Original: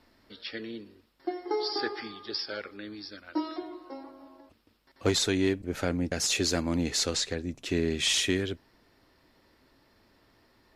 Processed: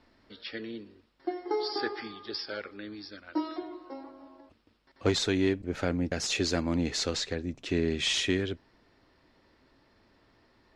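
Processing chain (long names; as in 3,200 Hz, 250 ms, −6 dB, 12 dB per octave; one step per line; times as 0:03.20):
high-frequency loss of the air 74 metres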